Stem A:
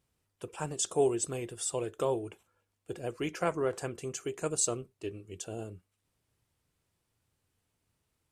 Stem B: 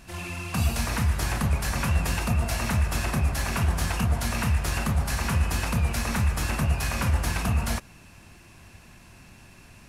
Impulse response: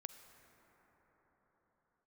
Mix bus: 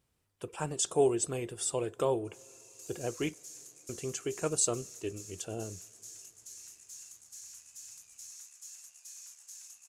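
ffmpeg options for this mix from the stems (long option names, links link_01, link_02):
-filter_complex "[0:a]volume=0dB,asplit=3[link_01][link_02][link_03];[link_01]atrim=end=3.34,asetpts=PTS-STARTPTS,afade=type=out:start_time=3.336:duration=0.004:curve=hsin[link_04];[link_02]atrim=start=3.34:end=3.89,asetpts=PTS-STARTPTS,volume=0[link_05];[link_03]atrim=start=3.89,asetpts=PTS-STARTPTS,afade=type=in:duration=0.004:curve=hsin[link_06];[link_04][link_05][link_06]concat=n=3:v=0:a=1,asplit=2[link_07][link_08];[link_08]volume=-14dB[link_09];[1:a]aemphasis=mode=production:type=bsi,aeval=exprs='(tanh(17.8*val(0)+0.55)-tanh(0.55))/17.8':channel_layout=same,bandpass=frequency=6700:width_type=q:width=6:csg=0,adelay=2250,volume=-7dB[link_10];[2:a]atrim=start_sample=2205[link_11];[link_09][link_11]afir=irnorm=-1:irlink=0[link_12];[link_07][link_10][link_12]amix=inputs=3:normalize=0"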